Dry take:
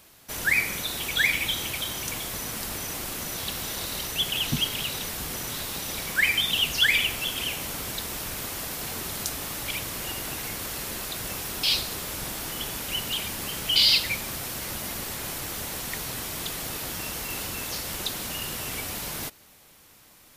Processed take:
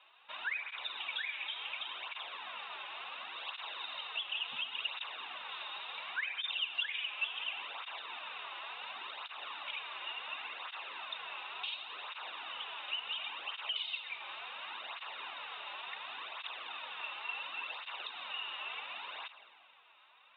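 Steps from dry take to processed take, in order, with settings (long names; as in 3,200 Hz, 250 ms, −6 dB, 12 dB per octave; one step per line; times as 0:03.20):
high-pass filter 970 Hz 12 dB per octave
downward compressor 5 to 1, threshold −32 dBFS, peak gain reduction 15 dB
Chebyshev low-pass with heavy ripple 3,800 Hz, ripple 9 dB
convolution reverb RT60 2.0 s, pre-delay 53 ms, DRR 11.5 dB
through-zero flanger with one copy inverted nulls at 0.7 Hz, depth 4.5 ms
level +5 dB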